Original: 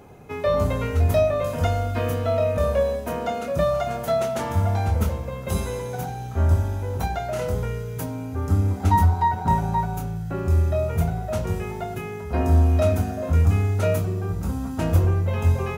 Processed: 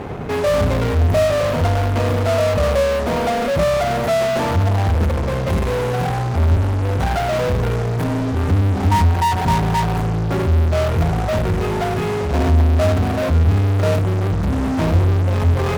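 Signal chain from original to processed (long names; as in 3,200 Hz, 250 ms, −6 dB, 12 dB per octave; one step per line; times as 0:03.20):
low-pass filter 1,100 Hz 6 dB per octave
in parallel at −8 dB: fuzz pedal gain 44 dB, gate −52 dBFS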